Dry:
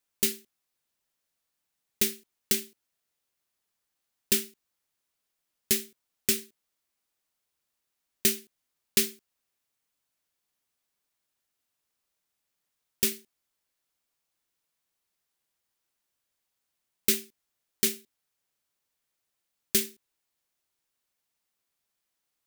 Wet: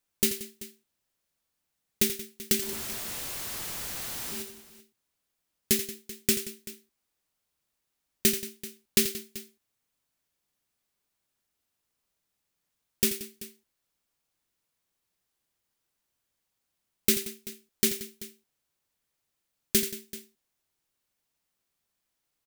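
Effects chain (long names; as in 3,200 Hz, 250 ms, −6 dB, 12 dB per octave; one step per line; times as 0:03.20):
0:02.62–0:04.42: sign of each sample alone
low-shelf EQ 330 Hz +6 dB
on a send: multi-tap delay 84/179/385 ms −11/−16.5/−17.5 dB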